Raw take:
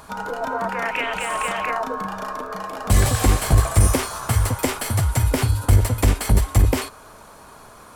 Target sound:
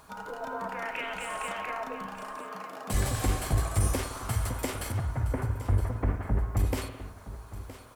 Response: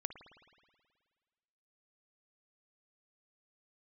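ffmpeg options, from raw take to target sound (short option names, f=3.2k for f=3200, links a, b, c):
-filter_complex "[0:a]asettb=1/sr,asplit=3[a][b][c];[a]atrim=end=4.924[d];[b]atrim=start=4.92:end=6.57,asetpts=PTS-STARTPTS,afade=t=in:d=0.004:c=qsin,afade=t=out:st=1.646:d=0.004:c=qsin,lowpass=f=1.8k:w=0.5412,lowpass=f=1.8k:w=1.3066[e];[c]atrim=start=6.566[f];[d][e]acrossfade=d=0.004:c1=hsin:c2=qsin[g];[g][f]acrossfade=d=0.004:c1=qsin:c2=hsin,aecho=1:1:967|1934|2901:0.188|0.0471|0.0118,acrusher=bits=8:mix=0:aa=0.000001,asettb=1/sr,asplit=3[h][i][j];[h]atrim=end=2.364[k];[i]atrim=start=2.36:end=2.94,asetpts=PTS-STARTPTS,afade=t=in:d=0.004:c=qsin,afade=t=out:st=0.576:d=0.004:c=qsin,highpass=f=120:w=0.5412,highpass=f=120:w=1.3066[l];[j]atrim=start=2.936[m];[k][l]acrossfade=d=0.004:c1=hsin:c2=qsin[n];[n][m]acrossfade=d=0.004:c1=qsin:c2=hsin[o];[1:a]atrim=start_sample=2205,afade=t=out:st=0.31:d=0.01,atrim=end_sample=14112,asetrate=43659,aresample=44100[p];[o][p]afir=irnorm=-1:irlink=0,volume=-8.5dB"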